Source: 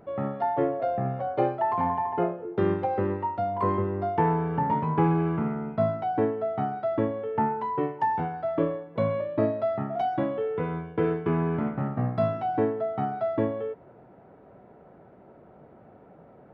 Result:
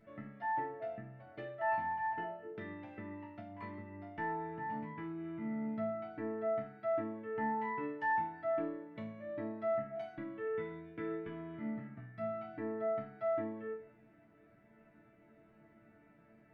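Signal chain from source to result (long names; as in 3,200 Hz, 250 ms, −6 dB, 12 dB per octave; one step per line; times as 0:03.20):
octave-band graphic EQ 125/250/500/1,000/2,000 Hz +9/−3/−7/−10/+10 dB
downward compressor 4 to 1, threshold −33 dBFS, peak gain reduction 13 dB
resonators tuned to a chord A3 sus4, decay 0.4 s
level +11.5 dB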